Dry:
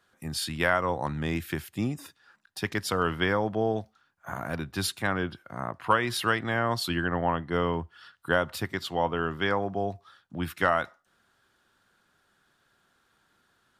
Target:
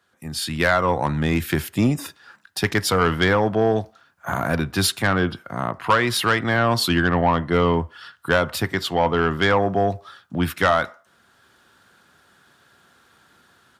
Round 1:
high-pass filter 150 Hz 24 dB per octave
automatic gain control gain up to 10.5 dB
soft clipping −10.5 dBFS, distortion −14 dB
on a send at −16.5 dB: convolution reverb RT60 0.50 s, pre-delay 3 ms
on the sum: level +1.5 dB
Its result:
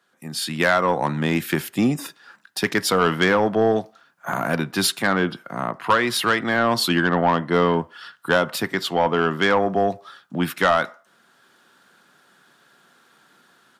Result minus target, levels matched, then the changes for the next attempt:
125 Hz band −4.5 dB
change: high-pass filter 55 Hz 24 dB per octave

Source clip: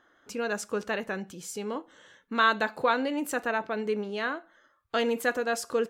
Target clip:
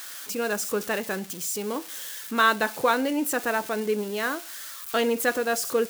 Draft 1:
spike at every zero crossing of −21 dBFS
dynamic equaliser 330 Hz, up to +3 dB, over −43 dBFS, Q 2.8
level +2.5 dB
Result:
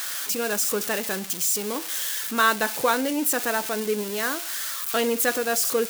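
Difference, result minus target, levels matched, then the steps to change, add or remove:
spike at every zero crossing: distortion +8 dB
change: spike at every zero crossing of −29.5 dBFS

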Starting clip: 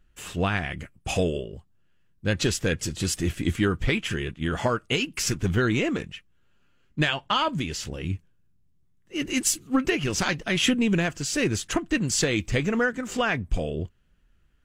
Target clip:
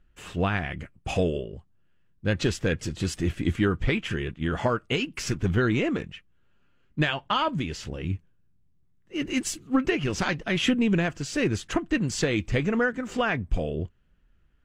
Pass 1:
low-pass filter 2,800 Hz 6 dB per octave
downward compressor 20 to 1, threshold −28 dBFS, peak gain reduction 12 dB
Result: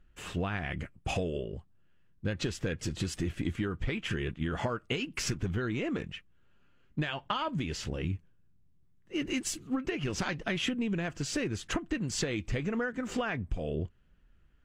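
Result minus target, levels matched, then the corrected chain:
downward compressor: peak gain reduction +12 dB
low-pass filter 2,800 Hz 6 dB per octave

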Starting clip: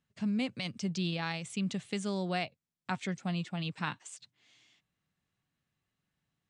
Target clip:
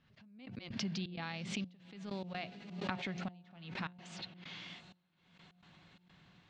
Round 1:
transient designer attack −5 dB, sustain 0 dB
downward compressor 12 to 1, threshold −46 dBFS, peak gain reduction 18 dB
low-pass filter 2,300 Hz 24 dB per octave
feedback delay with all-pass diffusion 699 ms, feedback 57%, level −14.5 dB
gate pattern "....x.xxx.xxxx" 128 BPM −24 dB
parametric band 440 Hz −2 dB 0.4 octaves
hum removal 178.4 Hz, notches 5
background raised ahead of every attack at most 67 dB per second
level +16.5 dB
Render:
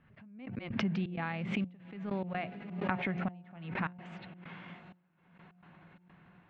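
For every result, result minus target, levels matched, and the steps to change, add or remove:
4,000 Hz band −9.5 dB; downward compressor: peak gain reduction −6.5 dB
change: low-pass filter 4,600 Hz 24 dB per octave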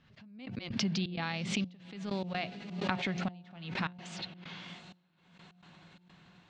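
downward compressor: peak gain reduction −6.5 dB
change: downward compressor 12 to 1, threshold −53 dBFS, peak gain reduction 24 dB

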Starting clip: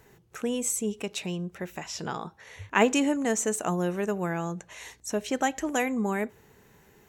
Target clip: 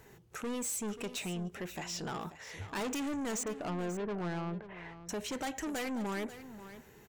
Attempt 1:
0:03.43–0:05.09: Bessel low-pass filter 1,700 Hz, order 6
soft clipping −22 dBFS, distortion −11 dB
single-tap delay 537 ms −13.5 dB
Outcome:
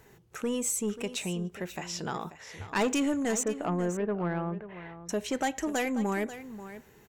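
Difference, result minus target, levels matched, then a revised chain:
soft clipping: distortion −7 dB
0:03.43–0:05.09: Bessel low-pass filter 1,700 Hz, order 6
soft clipping −34 dBFS, distortion −4 dB
single-tap delay 537 ms −13.5 dB

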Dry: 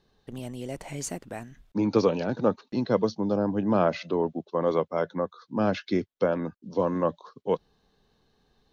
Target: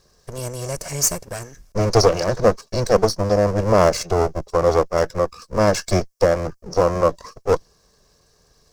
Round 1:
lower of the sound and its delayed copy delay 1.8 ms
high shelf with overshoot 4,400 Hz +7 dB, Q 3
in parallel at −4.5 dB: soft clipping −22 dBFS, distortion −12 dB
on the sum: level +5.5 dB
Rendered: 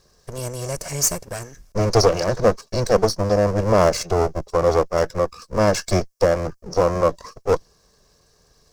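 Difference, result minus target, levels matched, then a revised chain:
soft clipping: distortion +10 dB
lower of the sound and its delayed copy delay 1.8 ms
high shelf with overshoot 4,400 Hz +7 dB, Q 3
in parallel at −4.5 dB: soft clipping −14 dBFS, distortion −22 dB
on the sum: level +5.5 dB

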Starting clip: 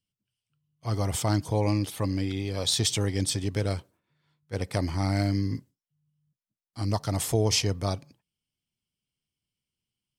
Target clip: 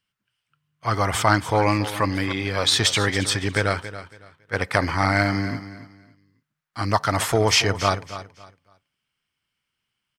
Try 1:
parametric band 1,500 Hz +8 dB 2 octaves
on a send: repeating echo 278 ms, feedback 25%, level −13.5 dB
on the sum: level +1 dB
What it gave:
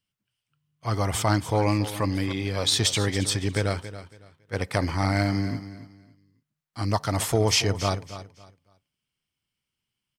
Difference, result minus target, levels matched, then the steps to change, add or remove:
2,000 Hz band −5.0 dB
change: parametric band 1,500 Hz +18.5 dB 2 octaves

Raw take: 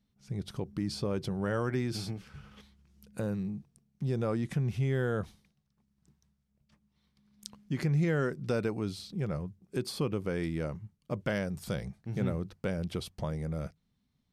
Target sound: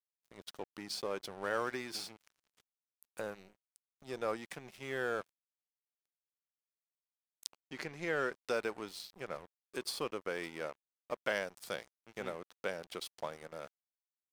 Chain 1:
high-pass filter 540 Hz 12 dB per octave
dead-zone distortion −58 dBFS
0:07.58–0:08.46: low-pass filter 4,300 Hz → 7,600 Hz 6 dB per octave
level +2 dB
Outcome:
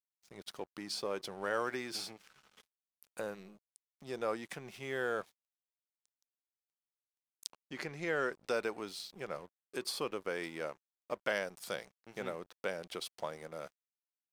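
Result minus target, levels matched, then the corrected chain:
dead-zone distortion: distortion −6 dB
high-pass filter 540 Hz 12 dB per octave
dead-zone distortion −51 dBFS
0:07.58–0:08.46: low-pass filter 4,300 Hz → 7,600 Hz 6 dB per octave
level +2 dB

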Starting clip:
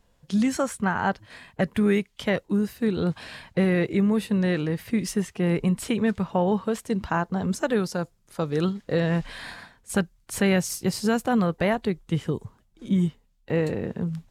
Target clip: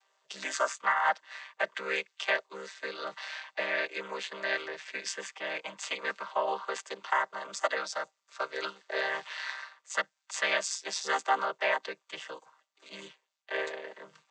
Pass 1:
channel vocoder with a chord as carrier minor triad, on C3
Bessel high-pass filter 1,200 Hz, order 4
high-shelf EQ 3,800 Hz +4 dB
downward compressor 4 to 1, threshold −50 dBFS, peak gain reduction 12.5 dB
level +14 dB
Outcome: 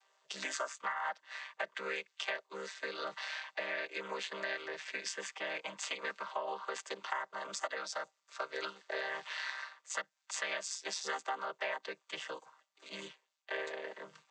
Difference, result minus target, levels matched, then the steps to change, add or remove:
downward compressor: peak gain reduction +12.5 dB
remove: downward compressor 4 to 1, threshold −50 dBFS, peak gain reduction 12.5 dB

